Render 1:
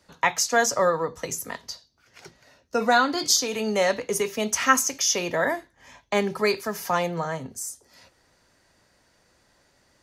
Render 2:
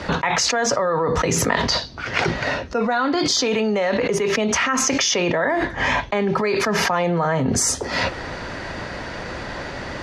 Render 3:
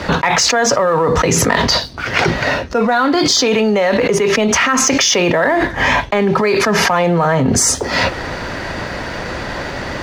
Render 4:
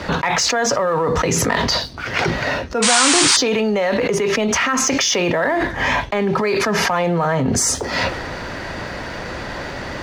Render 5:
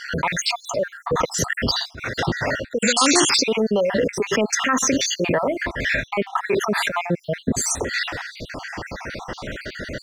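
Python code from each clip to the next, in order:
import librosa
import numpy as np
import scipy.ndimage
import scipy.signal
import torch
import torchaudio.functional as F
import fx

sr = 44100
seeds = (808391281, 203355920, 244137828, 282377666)

y1 = scipy.signal.sosfilt(scipy.signal.butter(2, 3000.0, 'lowpass', fs=sr, output='sos'), x)
y1 = fx.env_flatten(y1, sr, amount_pct=100)
y1 = y1 * librosa.db_to_amplitude(-6.0)
y2 = fx.leveller(y1, sr, passes=1)
y2 = y2 * librosa.db_to_amplitude(3.0)
y3 = fx.spec_paint(y2, sr, seeds[0], shape='noise', start_s=2.82, length_s=0.55, low_hz=810.0, high_hz=9500.0, level_db=-11.0)
y3 = fx.transient(y3, sr, attack_db=-1, sustain_db=3)
y3 = y3 * librosa.db_to_amplitude(-4.5)
y4 = fx.spec_dropout(y3, sr, seeds[1], share_pct=58)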